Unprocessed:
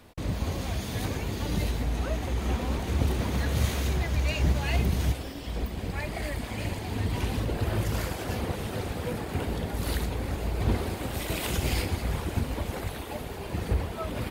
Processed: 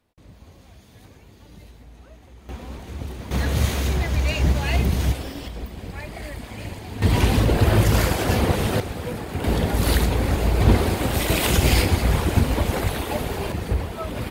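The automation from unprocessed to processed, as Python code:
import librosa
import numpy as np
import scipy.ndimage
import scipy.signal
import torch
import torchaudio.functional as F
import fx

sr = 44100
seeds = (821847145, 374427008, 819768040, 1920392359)

y = fx.gain(x, sr, db=fx.steps((0.0, -17.0), (2.49, -6.5), (3.31, 5.0), (5.48, -1.5), (7.02, 11.0), (8.8, 2.5), (9.44, 10.0), (13.52, 3.5)))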